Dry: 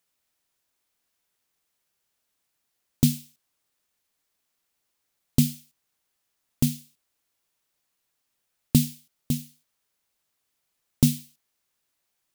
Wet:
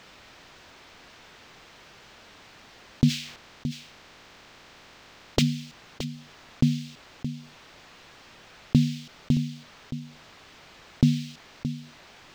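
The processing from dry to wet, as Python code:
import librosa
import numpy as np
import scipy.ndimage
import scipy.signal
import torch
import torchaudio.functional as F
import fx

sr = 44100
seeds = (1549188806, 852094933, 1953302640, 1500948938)

y = fx.spec_clip(x, sr, under_db=24, at=(3.08, 5.41), fade=0.02)
y = fx.air_absorb(y, sr, metres=190.0)
y = y + 10.0 ** (-22.0 / 20.0) * np.pad(y, (int(621 * sr / 1000.0), 0))[:len(y)]
y = fx.env_flatten(y, sr, amount_pct=50)
y = F.gain(torch.from_numpy(y), -1.0).numpy()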